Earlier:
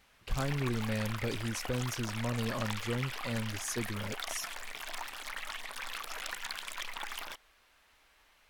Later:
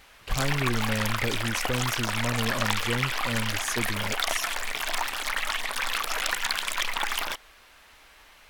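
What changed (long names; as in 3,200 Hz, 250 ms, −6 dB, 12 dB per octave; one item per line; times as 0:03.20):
speech +4.5 dB
background +12.0 dB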